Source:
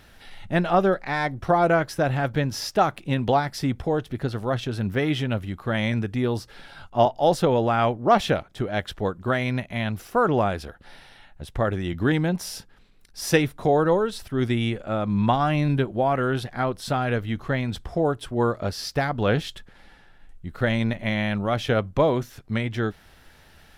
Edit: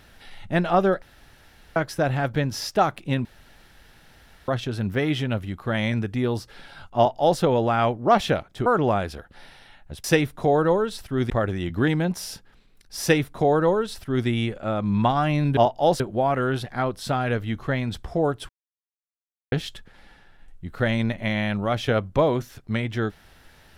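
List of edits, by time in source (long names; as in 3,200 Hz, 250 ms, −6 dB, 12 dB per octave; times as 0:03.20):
0:01.02–0:01.76: fill with room tone
0:03.25–0:04.48: fill with room tone
0:06.97–0:07.40: duplicate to 0:15.81
0:08.66–0:10.16: remove
0:13.25–0:14.51: duplicate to 0:11.54
0:18.30–0:19.33: silence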